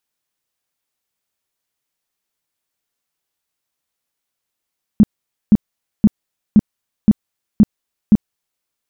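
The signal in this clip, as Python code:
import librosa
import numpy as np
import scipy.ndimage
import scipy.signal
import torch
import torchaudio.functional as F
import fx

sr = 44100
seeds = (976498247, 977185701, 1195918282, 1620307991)

y = fx.tone_burst(sr, hz=211.0, cycles=7, every_s=0.52, bursts=7, level_db=-4.0)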